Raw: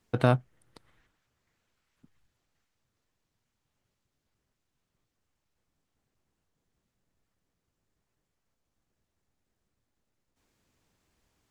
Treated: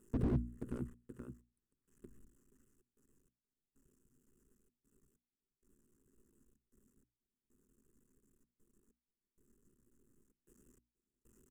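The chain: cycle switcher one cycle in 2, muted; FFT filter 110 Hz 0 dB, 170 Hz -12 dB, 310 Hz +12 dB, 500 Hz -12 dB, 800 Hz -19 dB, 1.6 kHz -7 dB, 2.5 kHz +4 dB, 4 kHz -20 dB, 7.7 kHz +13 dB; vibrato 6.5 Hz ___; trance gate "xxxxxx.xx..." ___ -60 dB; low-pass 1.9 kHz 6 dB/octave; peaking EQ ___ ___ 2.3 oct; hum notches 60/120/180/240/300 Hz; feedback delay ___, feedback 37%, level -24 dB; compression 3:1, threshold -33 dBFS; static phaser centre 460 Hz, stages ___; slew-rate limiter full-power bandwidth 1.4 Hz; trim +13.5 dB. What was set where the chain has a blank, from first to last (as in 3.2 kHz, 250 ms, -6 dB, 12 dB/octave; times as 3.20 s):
68 cents, 96 bpm, 150 Hz, +6 dB, 477 ms, 8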